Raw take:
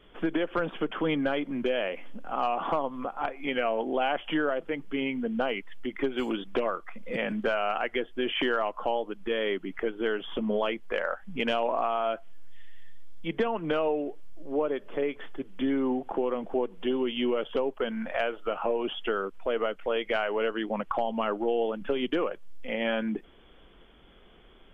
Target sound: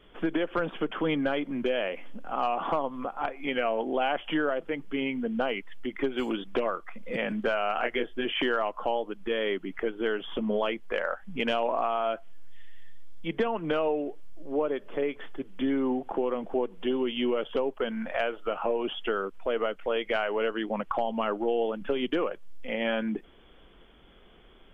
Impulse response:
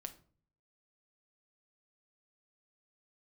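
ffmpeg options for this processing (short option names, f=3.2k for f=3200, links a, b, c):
-filter_complex "[0:a]asettb=1/sr,asplit=3[a][b][c];[a]atrim=end=7.754[d];[b]atrim=start=7.75:end=8.25,asetpts=PTS-STARTPTS,afade=t=in:d=0.004:c=qsin,afade=t=out:st=0.496:d=0.004:c=qsin,asplit=2[e][f];[f]adelay=25,volume=-4.5dB[g];[e][g]amix=inputs=2:normalize=0,atrim=end_sample=22050[h];[c]atrim=start=8.246[i];[d][h]acrossfade=d=0.004:c1=hsin:c2=qsin[j];[j][i]acrossfade=d=0.004:c1=qsin:c2=hsin"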